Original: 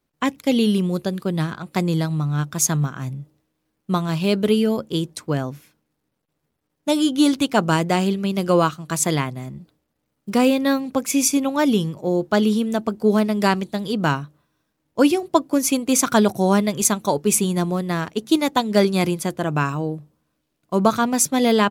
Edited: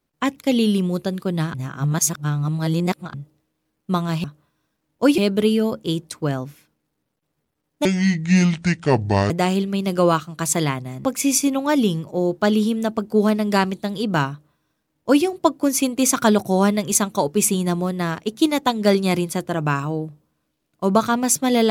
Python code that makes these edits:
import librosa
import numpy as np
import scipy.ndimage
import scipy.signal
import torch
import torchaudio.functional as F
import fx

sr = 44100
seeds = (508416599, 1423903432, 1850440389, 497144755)

y = fx.edit(x, sr, fx.reverse_span(start_s=1.54, length_s=1.6),
    fx.speed_span(start_s=6.91, length_s=0.9, speed=0.62),
    fx.cut(start_s=9.55, length_s=1.39),
    fx.duplicate(start_s=14.2, length_s=0.94, to_s=4.24), tone=tone)